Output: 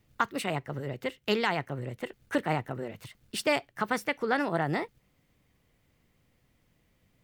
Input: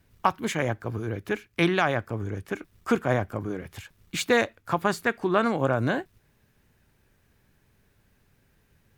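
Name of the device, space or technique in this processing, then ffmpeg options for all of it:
nightcore: -af "asetrate=54684,aresample=44100,volume=-4.5dB"

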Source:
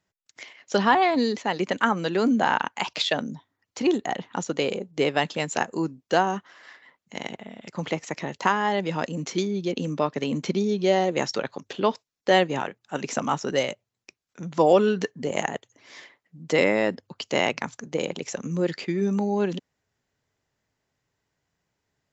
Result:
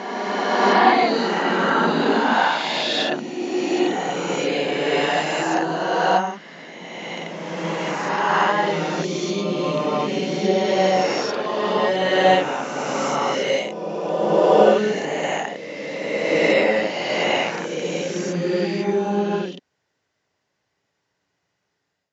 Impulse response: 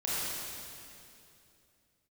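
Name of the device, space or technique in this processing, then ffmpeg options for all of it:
ghost voice: -filter_complex "[0:a]areverse[a];[1:a]atrim=start_sample=2205[b];[a][b]afir=irnorm=-1:irlink=0,areverse,highpass=f=300:p=1,lowpass=f=6.6k:w=0.5412,lowpass=f=6.6k:w=1.3066,volume=-1.5dB"

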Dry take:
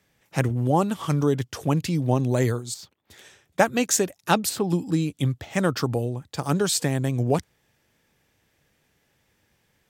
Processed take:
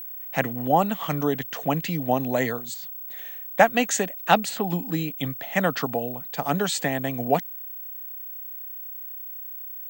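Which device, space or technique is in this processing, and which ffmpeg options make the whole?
old television with a line whistle: -af "highpass=f=170:w=0.5412,highpass=f=170:w=1.3066,equalizer=f=360:t=q:w=4:g=-8,equalizer=f=710:t=q:w=4:g=8,equalizer=f=1.9k:t=q:w=4:g=7,equalizer=f=2.9k:t=q:w=4:g=4,equalizer=f=5.3k:t=q:w=4:g=-8,lowpass=f=7.5k:w=0.5412,lowpass=f=7.5k:w=1.3066,aeval=exprs='val(0)+0.02*sin(2*PI*15734*n/s)':c=same"

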